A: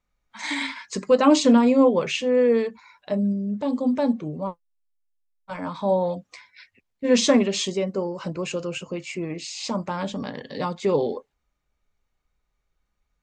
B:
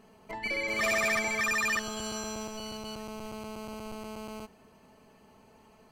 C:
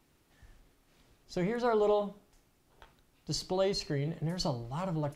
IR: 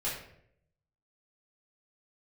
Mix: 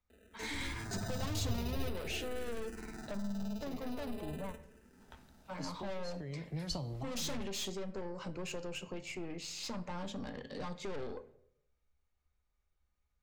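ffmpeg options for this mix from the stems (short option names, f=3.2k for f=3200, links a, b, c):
-filter_complex "[0:a]aeval=exprs='(tanh(22.4*val(0)+0.3)-tanh(0.3))/22.4':c=same,volume=-8.5dB,asplit=3[a][b][c];[b]volume=-16dB[d];[1:a]acompressor=threshold=-32dB:ratio=2,acrusher=samples=40:mix=1:aa=0.000001,asplit=2[e][f];[f]afreqshift=-0.47[g];[e][g]amix=inputs=2:normalize=1,adelay=100,volume=-4.5dB,asplit=2[h][i];[i]volume=-12dB[j];[2:a]acrossover=split=130[k][l];[l]acompressor=threshold=-32dB:ratio=6[m];[k][m]amix=inputs=2:normalize=0,adelay=2300,volume=0.5dB[n];[c]apad=whole_len=328768[o];[n][o]sidechaincompress=threshold=-48dB:ratio=8:attack=9.6:release=841[p];[3:a]atrim=start_sample=2205[q];[d][j]amix=inputs=2:normalize=0[r];[r][q]afir=irnorm=-1:irlink=0[s];[a][h][p][s]amix=inputs=4:normalize=0,acrossover=split=140|3000[t][u][v];[u]acompressor=threshold=-39dB:ratio=6[w];[t][w][v]amix=inputs=3:normalize=0,equalizer=f=71:t=o:w=0.36:g=12"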